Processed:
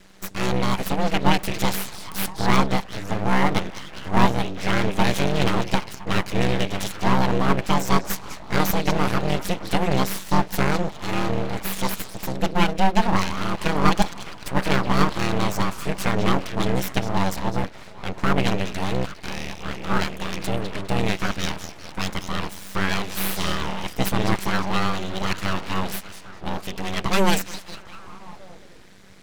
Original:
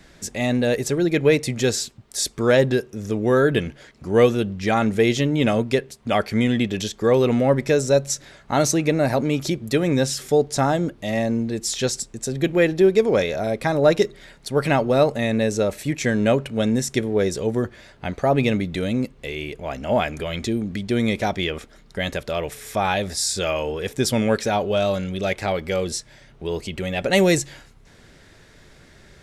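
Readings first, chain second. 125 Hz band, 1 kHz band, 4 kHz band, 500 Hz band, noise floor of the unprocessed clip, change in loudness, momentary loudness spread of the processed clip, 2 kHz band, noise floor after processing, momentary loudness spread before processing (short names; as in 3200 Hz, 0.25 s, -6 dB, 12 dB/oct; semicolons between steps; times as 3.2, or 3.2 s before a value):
-1.0 dB, +3.5 dB, +0.5 dB, -8.5 dB, -51 dBFS, -3.0 dB, 11 LU, 0.0 dB, -40 dBFS, 10 LU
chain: ring modulator 96 Hz; delay with a stepping band-pass 0.202 s, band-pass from 3400 Hz, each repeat -0.7 oct, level -6 dB; full-wave rectifier; gain +3.5 dB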